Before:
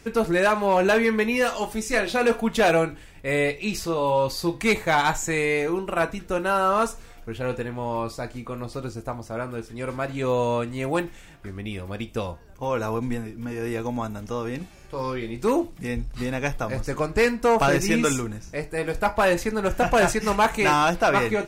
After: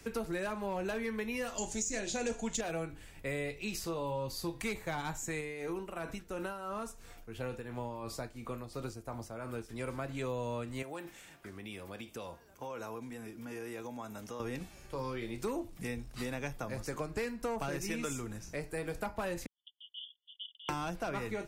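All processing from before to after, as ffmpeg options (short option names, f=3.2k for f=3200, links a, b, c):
-filter_complex "[0:a]asettb=1/sr,asplit=3[a][b][c];[a]atrim=end=1.584[d];[b]atrim=start=1.58:end=2.61,asetpts=PTS-STARTPTS,afade=t=in:d=0.004:c=qsin,afade=t=out:st=1.026:d=0.004:c=qsin,lowpass=f=6.9k:t=q:w=10,equalizer=f=1.2k:t=o:w=0.37:g=-10,acontrast=39[e];[c]atrim=start=2.606[f];[d][e]acrossfade=d=0.004:c1=hsin:c2=qsin[g];[g][f]acrossfade=d=0.004:c1=qsin:c2=hsin,asettb=1/sr,asplit=3[h][i][j];[h]atrim=end=5.404[k];[i]atrim=start=5.4:end=9.69,asetpts=PTS-STARTPTS,afade=t=in:d=0.004:c=qsin,afade=t=out:st=4.286:d=0.004:c=qsin,acompressor=threshold=-24dB:ratio=3:attack=3.2:release=140:knee=1:detection=peak,tremolo=f=2.9:d=0.61[l];[j]atrim=start=9.686[m];[k][l]acrossfade=d=0.004:c1=hsin:c2=qsin[n];[n][m]acrossfade=d=0.004:c1=qsin:c2=hsin,asettb=1/sr,asplit=3[o][p][q];[o]atrim=end=10.824[r];[p]atrim=start=10.82:end=14.4,asetpts=PTS-STARTPTS,afade=t=in:d=0.004:c=qsin,afade=t=out:st=3.576:d=0.004:c=qsin,acompressor=threshold=-31dB:ratio=5:attack=3.2:release=140:knee=1:detection=peak,highpass=f=280:p=1[s];[q]atrim=start=14.396[t];[r][s]acrossfade=d=0.004:c1=hsin:c2=qsin[u];[u][t]acrossfade=d=0.004:c1=qsin:c2=hsin,asettb=1/sr,asplit=3[v][w][x];[v]atrim=end=19.464[y];[w]atrim=start=19.46:end=20.69,asetpts=PTS-STARTPTS,afade=t=in:d=0.004:c=qsin,afade=t=out:st=1.226:d=0.004:c=qsin,asuperpass=centerf=3200:order=20:qfactor=4.9,agate=range=-29dB:threshold=-51dB:ratio=16:release=100:detection=peak[z];[x]atrim=start=20.686[aa];[y][z]acrossfade=d=0.004:c1=hsin:c2=qsin[ab];[ab][aa]acrossfade=d=0.004:c1=qsin:c2=hsin,highshelf=f=7.4k:g=6.5,acrossover=split=110|340[ac][ad][ae];[ac]acompressor=threshold=-42dB:ratio=4[af];[ad]acompressor=threshold=-37dB:ratio=4[ag];[ae]acompressor=threshold=-33dB:ratio=4[ah];[af][ag][ah]amix=inputs=3:normalize=0,volume=-5.5dB"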